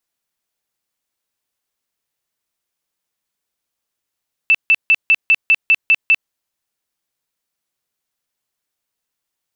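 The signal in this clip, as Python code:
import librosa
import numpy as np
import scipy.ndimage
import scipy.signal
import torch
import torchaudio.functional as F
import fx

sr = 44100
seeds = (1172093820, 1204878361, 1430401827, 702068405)

y = fx.tone_burst(sr, hz=2650.0, cycles=121, every_s=0.2, bursts=9, level_db=-7.5)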